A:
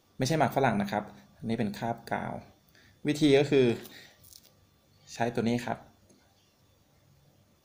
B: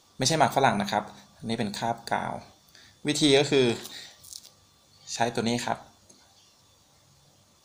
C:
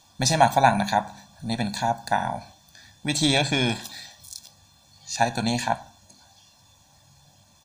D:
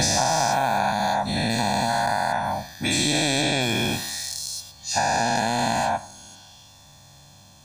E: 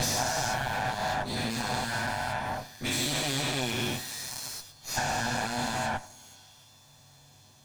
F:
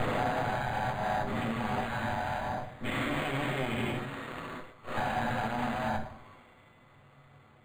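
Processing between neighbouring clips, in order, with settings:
ten-band graphic EQ 1 kHz +8 dB, 4 kHz +8 dB, 8 kHz +12 dB
comb 1.2 ms, depth 78%; trim +1 dB
every event in the spectrogram widened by 480 ms; compression 6:1, threshold -19 dBFS, peak gain reduction 13 dB
comb filter that takes the minimum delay 8 ms; trim -5.5 dB
on a send at -3 dB: reverberation RT60 0.65 s, pre-delay 4 ms; on the sum: decimation joined by straight lines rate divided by 8×; trim -2.5 dB

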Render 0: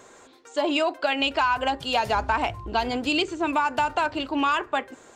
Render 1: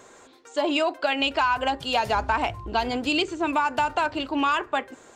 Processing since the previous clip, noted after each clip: no audible change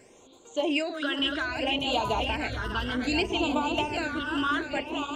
backward echo that repeats 298 ms, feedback 69%, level -4.5 dB; phase shifter stages 12, 0.63 Hz, lowest notch 740–1800 Hz; trim -1.5 dB

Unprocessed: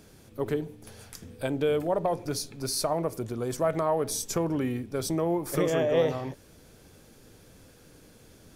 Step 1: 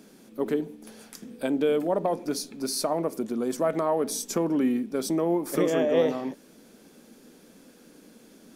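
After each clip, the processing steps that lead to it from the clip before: resonant low shelf 150 Hz -13.5 dB, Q 3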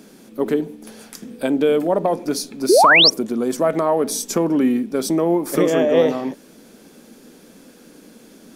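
painted sound rise, 2.69–3.10 s, 320–6000 Hz -18 dBFS; trim +7 dB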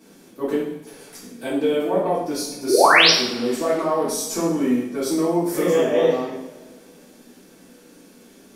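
two-slope reverb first 0.64 s, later 2.2 s, from -20 dB, DRR -10 dB; trim -12 dB

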